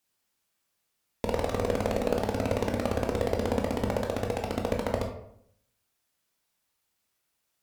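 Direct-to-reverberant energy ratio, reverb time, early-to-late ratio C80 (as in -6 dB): 1.5 dB, 0.70 s, 9.0 dB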